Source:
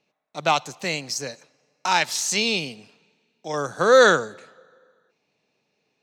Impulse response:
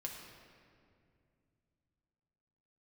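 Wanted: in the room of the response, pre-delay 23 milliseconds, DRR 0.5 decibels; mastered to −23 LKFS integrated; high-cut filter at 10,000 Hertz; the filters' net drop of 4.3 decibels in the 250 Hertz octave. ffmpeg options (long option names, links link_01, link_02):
-filter_complex "[0:a]lowpass=10000,equalizer=frequency=250:width_type=o:gain=-6,asplit=2[link_01][link_02];[1:a]atrim=start_sample=2205,adelay=23[link_03];[link_02][link_03]afir=irnorm=-1:irlink=0,volume=1dB[link_04];[link_01][link_04]amix=inputs=2:normalize=0,volume=-4.5dB"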